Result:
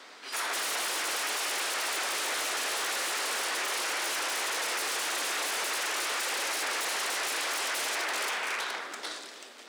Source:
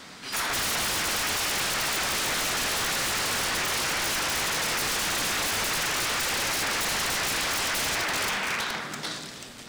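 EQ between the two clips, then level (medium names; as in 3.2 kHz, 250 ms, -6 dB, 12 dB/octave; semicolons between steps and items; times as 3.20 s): high-pass 340 Hz 24 dB/octave; dynamic bell 9.7 kHz, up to +6 dB, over -47 dBFS, Q 1.1; treble shelf 5.6 kHz -7.5 dB; -3.0 dB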